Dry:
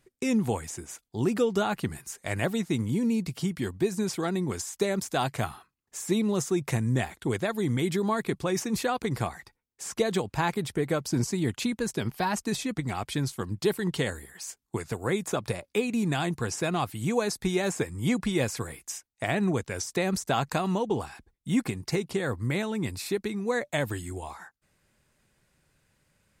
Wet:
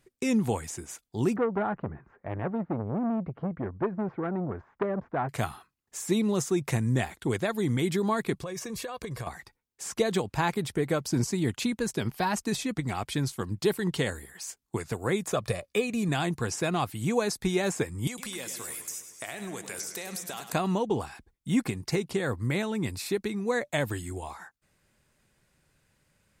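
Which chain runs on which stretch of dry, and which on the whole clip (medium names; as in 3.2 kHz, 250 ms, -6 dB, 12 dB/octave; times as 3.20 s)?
1.36–5.29 s: low-pass 1.5 kHz 24 dB/octave + transformer saturation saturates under 820 Hz
8.42–9.27 s: comb 1.8 ms, depth 58% + compression 12:1, threshold -32 dBFS
15.31–16.09 s: band-stop 910 Hz + comb 1.7 ms, depth 39%
18.07–20.53 s: RIAA curve recording + compression 10:1, threshold -33 dBFS + modulated delay 103 ms, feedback 64%, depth 106 cents, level -10 dB
whole clip: none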